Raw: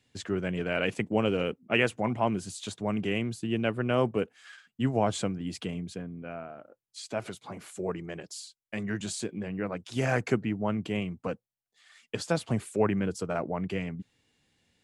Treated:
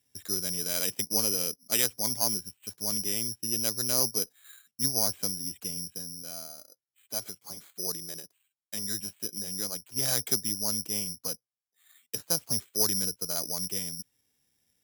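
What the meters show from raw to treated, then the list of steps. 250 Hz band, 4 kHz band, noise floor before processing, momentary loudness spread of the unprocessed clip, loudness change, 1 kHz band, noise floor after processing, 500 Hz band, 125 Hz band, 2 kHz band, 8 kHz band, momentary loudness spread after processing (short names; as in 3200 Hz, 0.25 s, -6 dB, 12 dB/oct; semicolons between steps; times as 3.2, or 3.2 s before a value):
-9.5 dB, +8.0 dB, under -85 dBFS, 14 LU, +2.5 dB, -9.5 dB, under -85 dBFS, -9.5 dB, -10.0 dB, -9.5 dB, +15.5 dB, 13 LU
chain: careless resampling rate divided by 8×, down filtered, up zero stuff; added harmonics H 2 -17 dB, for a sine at 7 dBFS; gain -9.5 dB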